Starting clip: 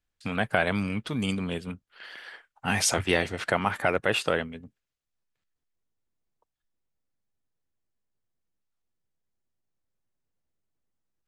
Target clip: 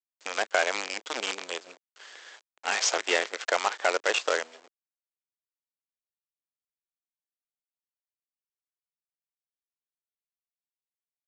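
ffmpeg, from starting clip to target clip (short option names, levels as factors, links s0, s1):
-af "aresample=16000,acrusher=bits=5:dc=4:mix=0:aa=0.000001,aresample=44100,highpass=f=410:w=0.5412,highpass=f=410:w=1.3066"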